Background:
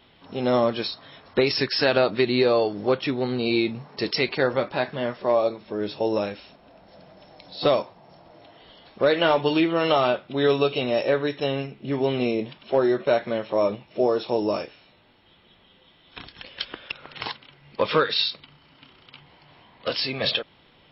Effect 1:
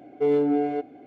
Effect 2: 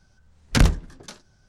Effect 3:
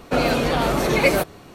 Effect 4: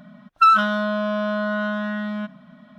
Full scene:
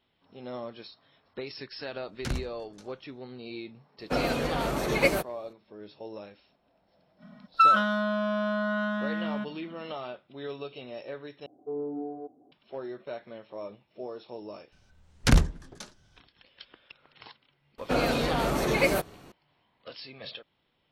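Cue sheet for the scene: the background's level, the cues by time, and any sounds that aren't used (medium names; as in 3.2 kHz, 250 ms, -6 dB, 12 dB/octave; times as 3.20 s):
background -17.5 dB
1.70 s: add 2 -15.5 dB + doubling 15 ms -9.5 dB
3.99 s: add 3 -5 dB + upward expansion, over -38 dBFS
7.18 s: add 4 -5 dB, fades 0.05 s
11.46 s: replace with 1 -12.5 dB + Chebyshev low-pass 1.1 kHz, order 4
14.72 s: add 2 -3 dB
17.78 s: add 3 -6.5 dB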